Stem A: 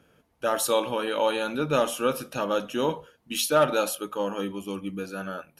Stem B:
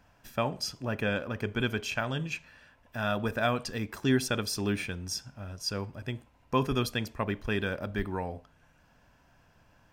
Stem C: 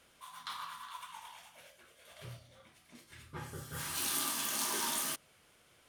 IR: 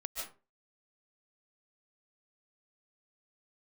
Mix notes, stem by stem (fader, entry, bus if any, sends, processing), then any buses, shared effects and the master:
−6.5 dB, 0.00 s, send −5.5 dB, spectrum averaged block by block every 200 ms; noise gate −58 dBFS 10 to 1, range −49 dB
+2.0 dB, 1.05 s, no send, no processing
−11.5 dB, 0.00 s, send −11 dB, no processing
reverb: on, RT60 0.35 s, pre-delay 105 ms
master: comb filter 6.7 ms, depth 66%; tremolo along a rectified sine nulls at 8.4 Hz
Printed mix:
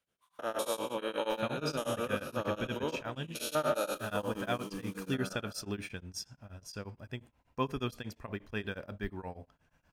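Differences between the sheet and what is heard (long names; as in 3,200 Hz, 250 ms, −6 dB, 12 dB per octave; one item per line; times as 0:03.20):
stem B +2.0 dB → −5.0 dB
stem C −11.5 dB → −21.0 dB
master: missing comb filter 6.7 ms, depth 66%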